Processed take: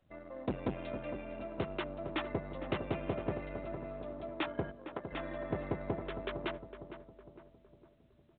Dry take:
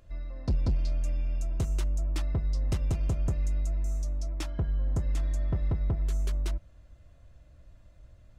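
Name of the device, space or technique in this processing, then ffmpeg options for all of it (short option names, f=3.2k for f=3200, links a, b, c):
telephone: -filter_complex "[0:a]asplit=3[a][b][c];[a]afade=t=out:st=4.7:d=0.02[d];[b]highpass=f=910:p=1,afade=t=in:st=4.7:d=0.02,afade=t=out:st=5.11:d=0.02[e];[c]afade=t=in:st=5.11:d=0.02[f];[d][e][f]amix=inputs=3:normalize=0,anlmdn=0.00631,highpass=330,lowpass=3.1k,asplit=2[g][h];[h]adelay=458,lowpass=f=1.2k:p=1,volume=-10dB,asplit=2[i][j];[j]adelay=458,lowpass=f=1.2k:p=1,volume=0.49,asplit=2[k][l];[l]adelay=458,lowpass=f=1.2k:p=1,volume=0.49,asplit=2[m][n];[n]adelay=458,lowpass=f=1.2k:p=1,volume=0.49,asplit=2[o][p];[p]adelay=458,lowpass=f=1.2k:p=1,volume=0.49[q];[g][i][k][m][o][q]amix=inputs=6:normalize=0,asoftclip=type=tanh:threshold=-31.5dB,volume=8.5dB" -ar 8000 -c:a pcm_mulaw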